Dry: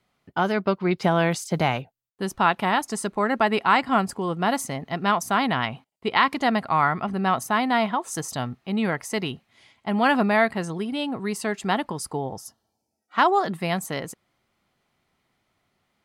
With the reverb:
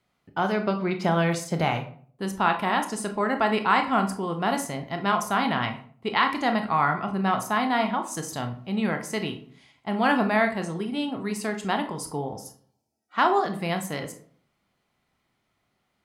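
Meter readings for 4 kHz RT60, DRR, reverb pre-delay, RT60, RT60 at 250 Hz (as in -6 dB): 0.30 s, 5.5 dB, 21 ms, 0.50 s, 0.60 s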